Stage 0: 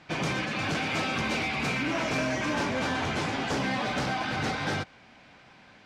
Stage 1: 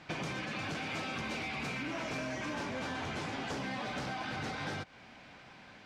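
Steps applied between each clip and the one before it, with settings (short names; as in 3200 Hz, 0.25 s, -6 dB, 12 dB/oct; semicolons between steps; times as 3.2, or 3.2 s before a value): compressor 6:1, threshold -36 dBFS, peak gain reduction 10 dB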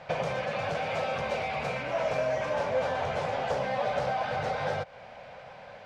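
EQ curve 150 Hz 0 dB, 320 Hz -13 dB, 530 Hz +13 dB, 1100 Hz +1 dB, 7900 Hz -7 dB; gain +4.5 dB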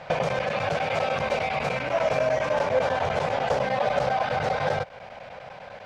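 chopper 10 Hz, duty 90%; gain +5.5 dB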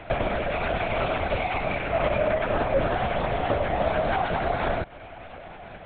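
LPC vocoder at 8 kHz whisper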